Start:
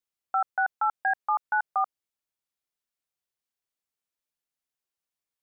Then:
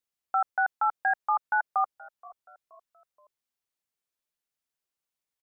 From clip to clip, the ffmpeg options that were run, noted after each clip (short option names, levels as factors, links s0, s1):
-filter_complex "[0:a]asplit=4[s0][s1][s2][s3];[s1]adelay=475,afreqshift=-57,volume=0.075[s4];[s2]adelay=950,afreqshift=-114,volume=0.0339[s5];[s3]adelay=1425,afreqshift=-171,volume=0.0151[s6];[s0][s4][s5][s6]amix=inputs=4:normalize=0"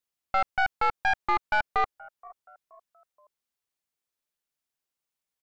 -af "aeval=exprs='(tanh(14.1*val(0)+0.8)-tanh(0.8))/14.1':c=same,volume=1.88"